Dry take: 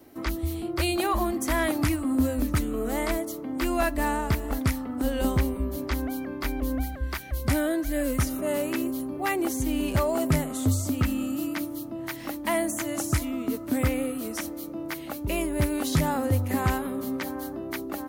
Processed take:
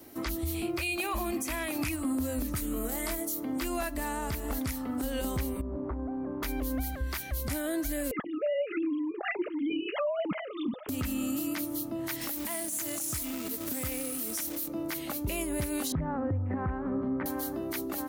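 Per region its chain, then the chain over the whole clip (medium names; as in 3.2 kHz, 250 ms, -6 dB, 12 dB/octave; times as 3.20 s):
0.54–1.91 s: peaking EQ 2.5 kHz +13.5 dB 0.23 oct + short-mantissa float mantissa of 6-bit
2.56–3.45 s: treble shelf 9.2 kHz +9 dB + doubling 24 ms -5.5 dB
5.61–6.43 s: one-bit delta coder 64 kbps, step -37.5 dBFS + low-pass 1.1 kHz 24 dB/octave + compression 4:1, threshold -31 dBFS
8.11–10.89 s: formants replaced by sine waves + comb of notches 380 Hz
12.21–14.68 s: treble shelf 6.5 kHz +9.5 dB + compression 3:1, threshold -32 dBFS + companded quantiser 4-bit
15.92–17.26 s: low-pass 1.7 kHz 24 dB/octave + bass shelf 250 Hz +7.5 dB
whole clip: treble shelf 3.6 kHz +8 dB; compression, threshold -27 dBFS; peak limiter -23 dBFS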